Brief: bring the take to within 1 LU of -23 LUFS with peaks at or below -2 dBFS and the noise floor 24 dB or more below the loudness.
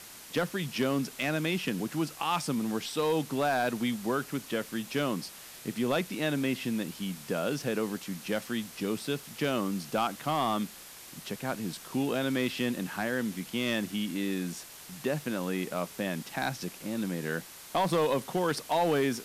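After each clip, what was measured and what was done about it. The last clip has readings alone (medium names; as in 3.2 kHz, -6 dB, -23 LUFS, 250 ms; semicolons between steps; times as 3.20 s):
clipped samples 0.5%; clipping level -20.0 dBFS; noise floor -48 dBFS; noise floor target -56 dBFS; loudness -31.5 LUFS; peak level -20.0 dBFS; loudness target -23.0 LUFS
-> clip repair -20 dBFS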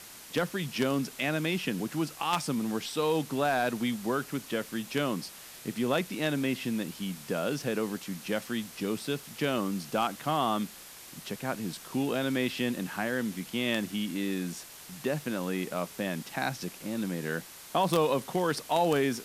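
clipped samples 0.0%; noise floor -48 dBFS; noise floor target -56 dBFS
-> noise print and reduce 8 dB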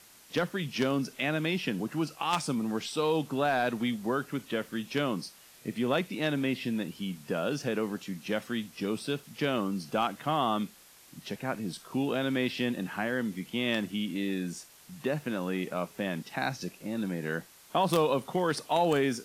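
noise floor -56 dBFS; loudness -31.5 LUFS; peak level -11.0 dBFS; loudness target -23.0 LUFS
-> trim +8.5 dB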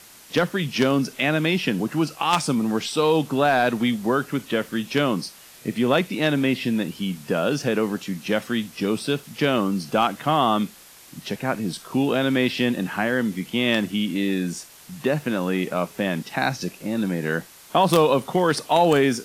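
loudness -23.0 LUFS; peak level -2.5 dBFS; noise floor -47 dBFS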